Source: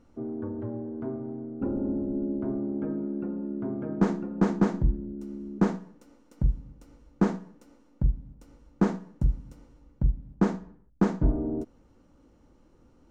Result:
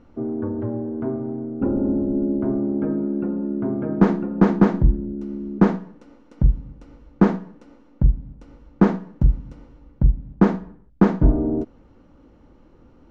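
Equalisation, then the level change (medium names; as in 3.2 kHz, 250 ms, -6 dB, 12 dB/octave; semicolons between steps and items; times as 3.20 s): low-pass 3.6 kHz 12 dB/octave; +8.0 dB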